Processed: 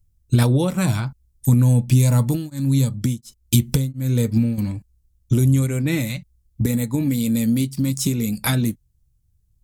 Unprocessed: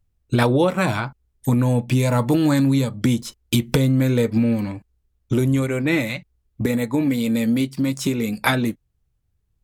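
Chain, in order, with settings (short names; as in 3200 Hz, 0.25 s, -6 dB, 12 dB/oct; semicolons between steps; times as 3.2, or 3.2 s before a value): tone controls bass +14 dB, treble +15 dB; 2.15–4.58 beating tremolo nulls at 1.4 Hz; gain -7.5 dB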